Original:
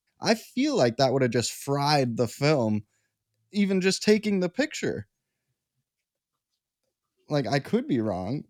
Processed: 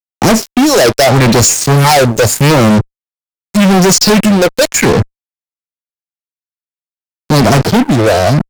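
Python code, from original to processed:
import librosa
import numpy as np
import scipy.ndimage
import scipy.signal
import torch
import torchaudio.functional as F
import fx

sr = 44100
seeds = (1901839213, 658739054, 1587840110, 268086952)

y = fx.phaser_stages(x, sr, stages=4, low_hz=190.0, high_hz=3400.0, hz=0.83, feedback_pct=45)
y = fx.fuzz(y, sr, gain_db=40.0, gate_db=-44.0)
y = F.gain(torch.from_numpy(y), 7.5).numpy()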